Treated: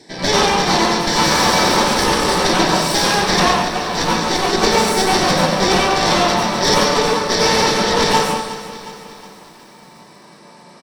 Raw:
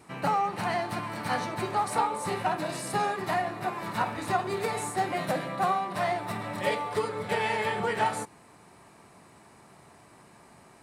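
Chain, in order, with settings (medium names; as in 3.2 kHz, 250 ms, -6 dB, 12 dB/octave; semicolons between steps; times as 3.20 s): one-sided wavefolder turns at -23.5 dBFS; frequency weighting D; 1.07–1.74 s: overdrive pedal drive 28 dB, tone 3.6 kHz, clips at -14 dBFS; loudspeakers at several distances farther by 48 m -7 dB, 68 m -9 dB; Chebyshev shaper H 6 -7 dB, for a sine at -10 dBFS; 3.53–4.53 s: feedback comb 56 Hz, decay 0.29 s, harmonics all, mix 70%; reverberation RT60 0.35 s, pre-delay 84 ms, DRR -5.5 dB; gain riding within 4 dB 0.5 s; bit-crushed delay 363 ms, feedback 55%, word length 6-bit, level -14 dB; trim -3.5 dB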